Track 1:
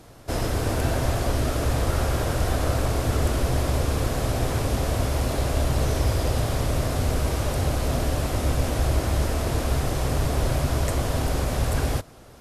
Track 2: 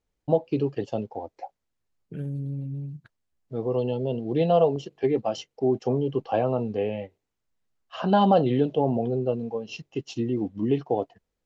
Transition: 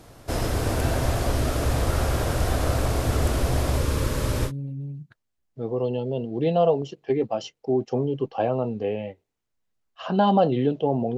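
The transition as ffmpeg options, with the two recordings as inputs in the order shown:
-filter_complex "[0:a]asettb=1/sr,asplit=3[s0][s1][s2];[s0]atrim=end=3.764[s3];[s1]atrim=start=3.76:end=4.52,asetpts=PTS-STARTPTS,afade=t=in:d=0.004:c=qsin,afade=t=out:st=0.756:d=0.004:c=qsin,asuperstop=centerf=720:order=4:qfactor=3.7[s4];[s2]atrim=start=4.516[s5];[s3][s4]acrossfade=d=0.004:c1=hsin:c2=qsin[s6];[s6][s5]acrossfade=d=0.004:c1=qsin:c2=hsin,apad=whole_dur=11.17,atrim=end=11.17,atrim=end=4.52,asetpts=PTS-STARTPTS[s7];[1:a]atrim=start=2.38:end=9.11,asetpts=PTS-STARTPTS[s8];[s7][s8]acrossfade=d=0.08:c1=tri:c2=tri"

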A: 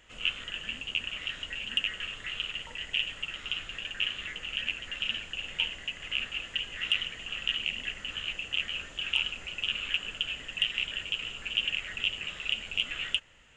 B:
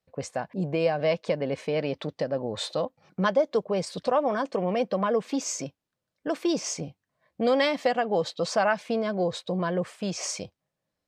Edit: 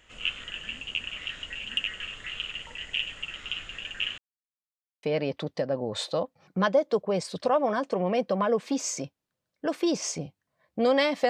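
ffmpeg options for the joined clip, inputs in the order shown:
-filter_complex "[0:a]apad=whole_dur=11.29,atrim=end=11.29,asplit=2[s0][s1];[s0]atrim=end=4.18,asetpts=PTS-STARTPTS,afade=t=out:st=4.176:d=0.004:c=hsin[s2];[s1]atrim=start=4.18:end=5.03,asetpts=PTS-STARTPTS,volume=0[s3];[1:a]atrim=start=1.65:end=7.91,asetpts=PTS-STARTPTS,afade=t=in:d=0.004:c=hsin[s4];[s2][s3][s4]concat=n=3:v=0:a=1"

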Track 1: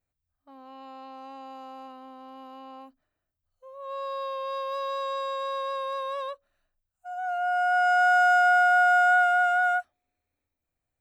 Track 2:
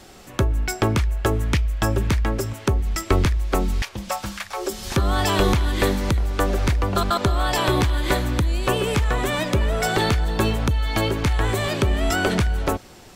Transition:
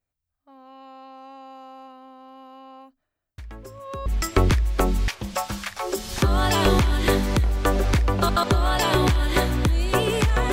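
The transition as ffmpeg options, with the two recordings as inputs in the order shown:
-filter_complex "[1:a]asplit=2[s0][s1];[0:a]apad=whole_dur=10.52,atrim=end=10.52,atrim=end=4.062[s2];[s1]atrim=start=2.798:end=9.26[s3];[s0]atrim=start=2.12:end=2.8,asetpts=PTS-STARTPTS,volume=0.133,afade=t=in:d=0.004:c=hsin,afade=t=out:st=0.676:d=0.004:c=hsin,adelay=3380[s4];[s2][s3]acrossfade=d=0.004:c1=hsin:c2=hsin[s5];[s5][s4]amix=inputs=2:normalize=0"

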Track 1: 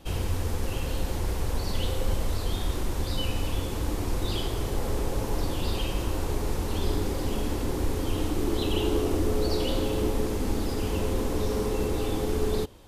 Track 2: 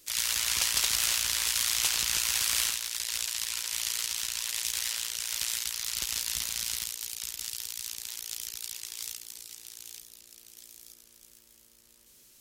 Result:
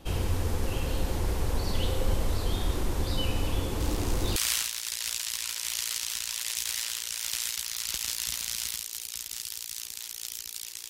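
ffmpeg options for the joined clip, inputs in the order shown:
-filter_complex "[1:a]asplit=2[s0][s1];[0:a]apad=whole_dur=10.89,atrim=end=10.89,atrim=end=4.362[s2];[s1]atrim=start=2.438:end=8.97[s3];[s0]atrim=start=1.88:end=2.44,asetpts=PTS-STARTPTS,volume=0.188,afade=t=in:d=0.004:c=hsin,afade=t=out:st=0.556:d=0.004:c=hsin,adelay=3800[s4];[s2][s3]acrossfade=d=0.004:c1=hsin:c2=hsin[s5];[s5][s4]amix=inputs=2:normalize=0"

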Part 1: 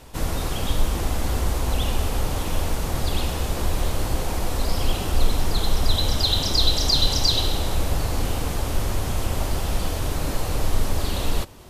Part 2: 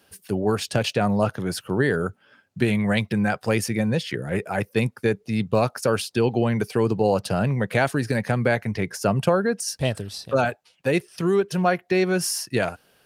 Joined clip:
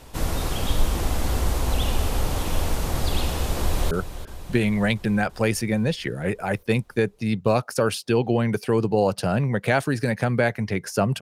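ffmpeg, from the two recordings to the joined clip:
-filter_complex "[0:a]apad=whole_dur=11.21,atrim=end=11.21,atrim=end=3.912[s0];[1:a]atrim=start=1.978:end=9.28[s1];[s0][s1]acrossfade=d=0.004:c1=hsin:c2=hsin,asplit=2[s2][s3];[s3]afade=t=in:st=3.59:d=0.01,afade=t=out:st=3.91:d=0.01,aecho=0:1:340|680|1020|1360|1700|2040|2380|2720|3060|3400:0.251189|0.175832|0.123082|0.0861577|0.0603104|0.0422173|0.0295521|0.0206865|0.0144805|0.0101364[s4];[s2][s4]amix=inputs=2:normalize=0"

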